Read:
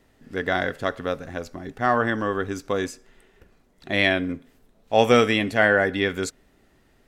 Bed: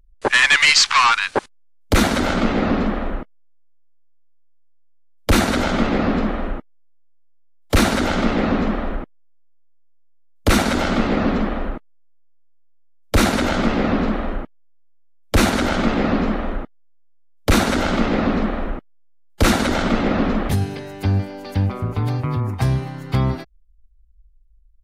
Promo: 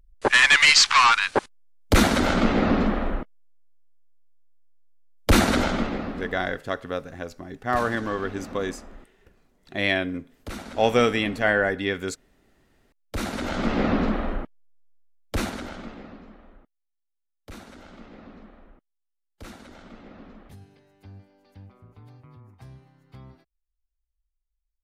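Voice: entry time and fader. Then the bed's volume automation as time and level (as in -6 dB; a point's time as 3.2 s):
5.85 s, -3.0 dB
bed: 5.58 s -2 dB
6.43 s -20.5 dB
12.83 s -20.5 dB
13.81 s -3.5 dB
14.95 s -3.5 dB
16.23 s -27 dB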